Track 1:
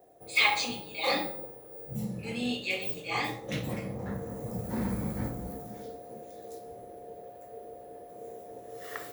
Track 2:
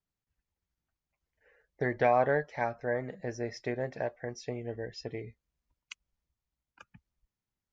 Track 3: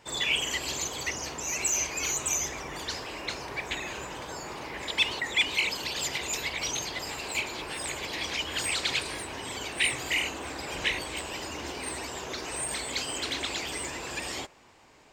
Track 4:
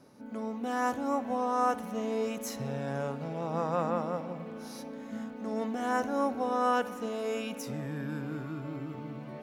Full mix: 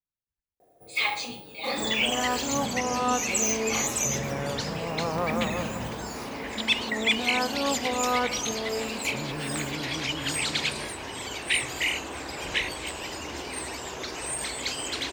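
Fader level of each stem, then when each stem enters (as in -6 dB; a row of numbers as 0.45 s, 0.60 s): -2.5 dB, -11.0 dB, +1.0 dB, +1.0 dB; 0.60 s, 0.00 s, 1.70 s, 1.45 s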